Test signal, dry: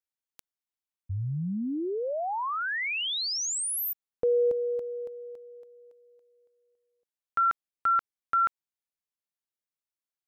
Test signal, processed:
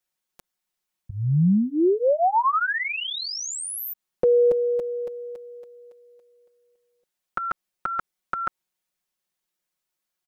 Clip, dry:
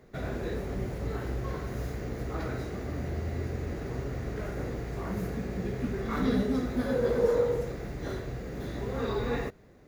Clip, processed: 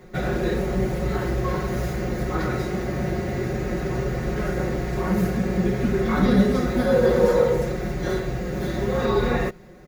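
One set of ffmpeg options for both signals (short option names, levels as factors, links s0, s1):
-filter_complex "[0:a]aecho=1:1:5.5:0.98,acrossover=split=1300[s0][s1];[s1]alimiter=level_in=2.99:limit=0.0631:level=0:latency=1:release=68,volume=0.335[s2];[s0][s2]amix=inputs=2:normalize=0,volume=2.37"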